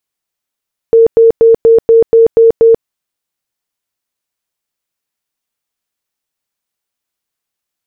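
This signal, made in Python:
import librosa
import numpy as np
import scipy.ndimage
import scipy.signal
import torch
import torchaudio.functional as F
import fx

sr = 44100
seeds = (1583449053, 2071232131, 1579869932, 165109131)

y = fx.tone_burst(sr, hz=456.0, cycles=62, every_s=0.24, bursts=8, level_db=-2.0)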